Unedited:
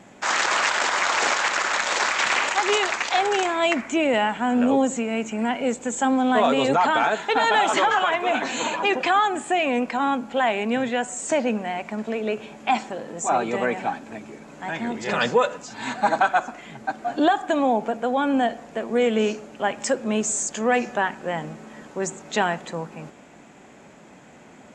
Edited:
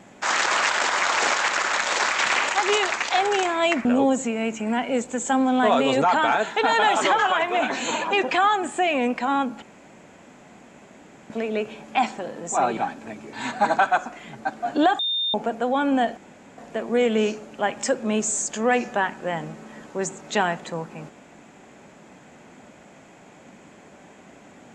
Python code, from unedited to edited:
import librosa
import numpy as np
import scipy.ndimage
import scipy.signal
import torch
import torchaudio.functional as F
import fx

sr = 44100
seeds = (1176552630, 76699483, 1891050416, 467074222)

y = fx.edit(x, sr, fx.cut(start_s=3.85, length_s=0.72),
    fx.room_tone_fill(start_s=10.34, length_s=1.68),
    fx.cut(start_s=13.49, length_s=0.33),
    fx.cut(start_s=14.38, length_s=1.37),
    fx.bleep(start_s=17.41, length_s=0.35, hz=3630.0, db=-21.5),
    fx.insert_room_tone(at_s=18.59, length_s=0.41), tone=tone)